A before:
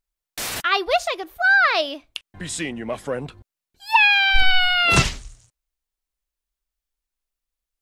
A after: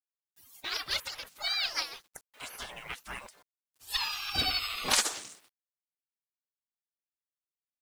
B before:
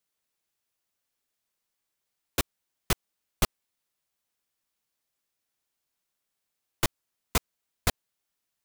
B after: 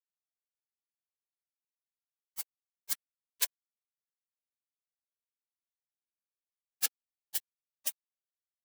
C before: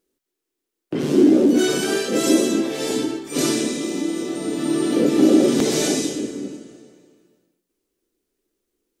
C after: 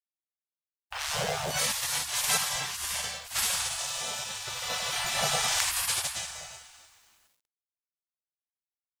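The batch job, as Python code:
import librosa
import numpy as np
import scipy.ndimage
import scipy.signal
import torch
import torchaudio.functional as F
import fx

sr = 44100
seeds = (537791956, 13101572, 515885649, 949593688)

y = fx.spec_gate(x, sr, threshold_db=-25, keep='weak')
y = fx.quant_companded(y, sr, bits=6)
y = y * librosa.db_to_amplitude(5.0)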